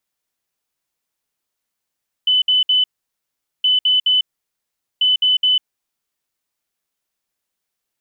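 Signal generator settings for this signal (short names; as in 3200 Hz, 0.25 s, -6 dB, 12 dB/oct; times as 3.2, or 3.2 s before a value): beep pattern sine 3010 Hz, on 0.15 s, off 0.06 s, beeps 3, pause 0.80 s, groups 3, -11.5 dBFS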